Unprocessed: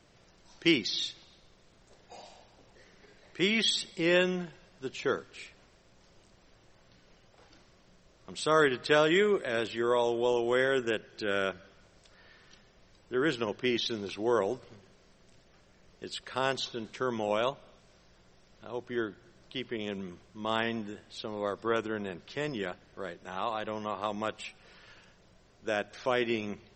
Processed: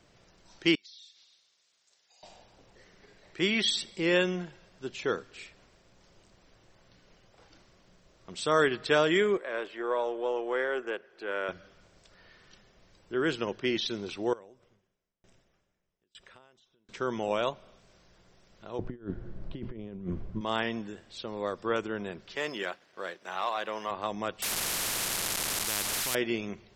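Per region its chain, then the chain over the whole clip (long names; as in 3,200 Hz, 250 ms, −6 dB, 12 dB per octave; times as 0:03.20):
0:00.75–0:02.23: downward compressor 4 to 1, threshold −50 dBFS + resonant band-pass 5,900 Hz, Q 0.9
0:09.37–0:11.49: gain on one half-wave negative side −3 dB + three-way crossover with the lows and the highs turned down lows −21 dB, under 320 Hz, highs −13 dB, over 2,400 Hz
0:14.33–0:16.89: downward compressor 5 to 1, threshold −45 dBFS + notch filter 4,400 Hz, Q 5.2 + tremolo with a ramp in dB decaying 1.1 Hz, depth 33 dB
0:18.79–0:20.41: low-pass filter 3,600 Hz 6 dB per octave + spectral tilt −4 dB per octave + compressor whose output falls as the input rises −35 dBFS, ratio −0.5
0:22.36–0:23.91: meter weighting curve A + leveller curve on the samples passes 1
0:24.42–0:26.15: linear delta modulator 64 kbit/s, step −37.5 dBFS + every bin compressed towards the loudest bin 10 to 1
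whole clip: no processing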